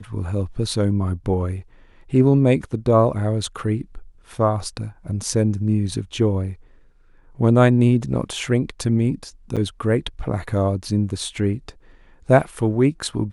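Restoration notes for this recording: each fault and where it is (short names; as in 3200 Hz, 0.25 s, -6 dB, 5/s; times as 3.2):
9.56–9.57 gap 6.9 ms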